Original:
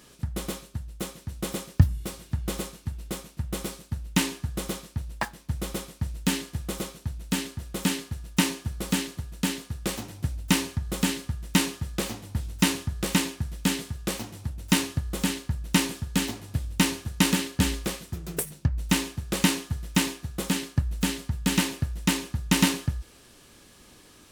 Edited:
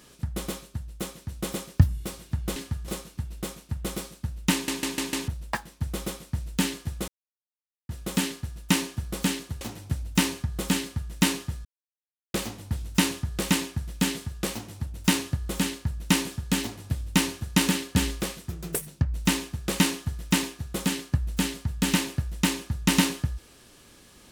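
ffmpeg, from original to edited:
ffmpeg -i in.wav -filter_complex "[0:a]asplit=12[link_01][link_02][link_03][link_04][link_05][link_06][link_07][link_08][link_09][link_10][link_11][link_12];[link_01]atrim=end=2.562[link_13];[link_02]atrim=start=11.138:end=11.462[link_14];[link_03]atrim=start=2.558:end=4.362[link_15];[link_04]atrim=start=4.208:end=4.362[link_16];[link_05]atrim=start=4.208:end=4.362[link_17];[link_06]atrim=start=4.208:end=4.362[link_18];[link_07]atrim=start=4.208:end=4.362[link_19];[link_08]atrim=start=4.958:end=6.76,asetpts=PTS-STARTPTS,afade=type=out:start_time=1.798:duration=0.004:curve=hsin[link_20];[link_09]atrim=start=6.76:end=7.57,asetpts=PTS-STARTPTS,volume=0[link_21];[link_10]atrim=start=7.57:end=9.292,asetpts=PTS-STARTPTS,afade=type=in:duration=0.004:curve=hsin[link_22];[link_11]atrim=start=9.938:end=11.98,asetpts=PTS-STARTPTS,afade=type=out:start_time=2.038:duration=0.004:curve=hsin,apad=pad_dur=0.69[link_23];[link_12]atrim=start=11.98,asetpts=PTS-STARTPTS,afade=type=in:duration=0.004:curve=hsin[link_24];[link_13][link_14]acrossfade=duration=0.004:curve1=hsin:curve2=hsin[link_25];[link_25][link_15]acrossfade=duration=0.004:curve1=hsin:curve2=hsin[link_26];[link_26][link_16]acrossfade=duration=0.004:curve1=hsin:curve2=hsin[link_27];[link_27][link_17]acrossfade=duration=0.004:curve1=hsin:curve2=hsin[link_28];[link_28][link_18]acrossfade=duration=0.004:curve1=hsin:curve2=hsin[link_29];[link_29][link_19]acrossfade=duration=0.004:curve1=hsin:curve2=hsin[link_30];[link_20][link_21][link_22]concat=n=3:v=0:a=1[link_31];[link_30][link_31]acrossfade=duration=0.004:curve1=hsin:curve2=hsin[link_32];[link_23][link_24]concat=n=2:v=0:a=1[link_33];[link_32][link_33]acrossfade=duration=0.004:curve1=hsin:curve2=hsin" out.wav

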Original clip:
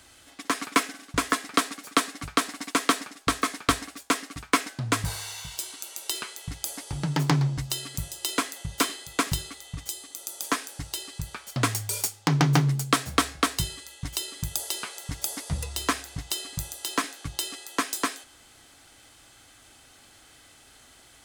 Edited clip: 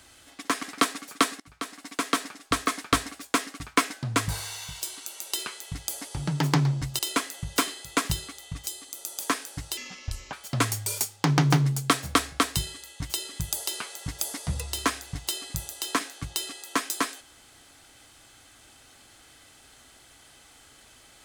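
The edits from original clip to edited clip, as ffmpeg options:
ffmpeg -i in.wav -filter_complex "[0:a]asplit=6[link_01][link_02][link_03][link_04][link_05][link_06];[link_01]atrim=end=0.632[link_07];[link_02]atrim=start=1.388:end=2.16,asetpts=PTS-STARTPTS,afade=type=out:start_time=0.768:duration=0.004:curve=hsin:silence=0.0707946[link_08];[link_03]atrim=start=2.16:end=7.752,asetpts=PTS-STARTPTS,afade=type=in:duration=1.5:curve=qsin:silence=0.0707946[link_09];[link_04]atrim=start=8.208:end=10.994[link_10];[link_05]atrim=start=10.99:end=11.36,asetpts=PTS-STARTPTS,asetrate=29106,aresample=44100[link_11];[link_06]atrim=start=11.356[link_12];[link_08][link_09]concat=n=2:v=0:a=1[link_13];[link_07][link_13]acrossfade=duration=0.004:curve1=hsin:curve2=hsin[link_14];[link_14][link_10]acrossfade=duration=0.004:curve1=hsin:curve2=hsin[link_15];[link_15][link_11]acrossfade=duration=0.004:curve1=hsin:curve2=hsin[link_16];[link_16][link_12]acrossfade=duration=0.004:curve1=hsin:curve2=hsin" out.wav

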